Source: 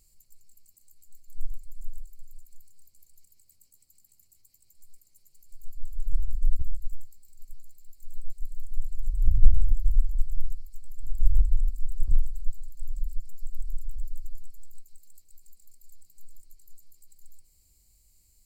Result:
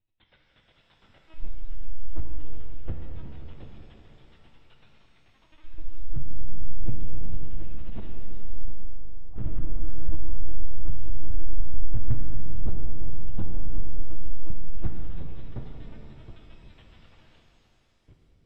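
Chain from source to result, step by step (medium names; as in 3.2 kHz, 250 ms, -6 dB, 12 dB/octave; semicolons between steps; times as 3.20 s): backward echo that repeats 362 ms, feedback 49%, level -6 dB; high-pass 91 Hz 6 dB/octave; waveshaping leveller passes 5; compression 6:1, threshold -24 dBFS, peak gain reduction 8.5 dB; 8.70–9.37 s: cascade formant filter a; chorus voices 4, 0.11 Hz, delay 21 ms, depth 1.1 ms; LPC vocoder at 8 kHz pitch kept; pitch-shifted reverb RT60 3.1 s, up +7 st, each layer -8 dB, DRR 0 dB; trim +3 dB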